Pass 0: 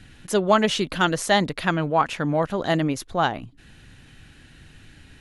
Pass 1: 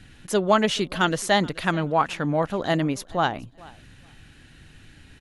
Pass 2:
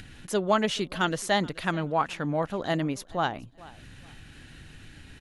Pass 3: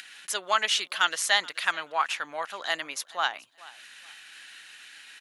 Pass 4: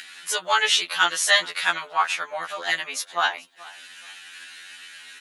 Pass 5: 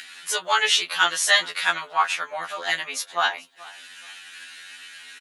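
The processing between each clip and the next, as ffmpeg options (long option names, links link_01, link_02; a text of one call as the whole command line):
ffmpeg -i in.wav -af "aecho=1:1:428|856:0.0708|0.0127,volume=-1dB" out.wav
ffmpeg -i in.wav -af "acompressor=mode=upward:threshold=-34dB:ratio=2.5,volume=-4.5dB" out.wav
ffmpeg -i in.wav -af "highpass=1400,volume=7dB" out.wav
ffmpeg -i in.wav -af "afftfilt=real='re*2*eq(mod(b,4),0)':imag='im*2*eq(mod(b,4),0)':win_size=2048:overlap=0.75,volume=7.5dB" out.wav
ffmpeg -i in.wav -filter_complex "[0:a]asplit=2[link_01][link_02];[link_02]adelay=19,volume=-13dB[link_03];[link_01][link_03]amix=inputs=2:normalize=0" out.wav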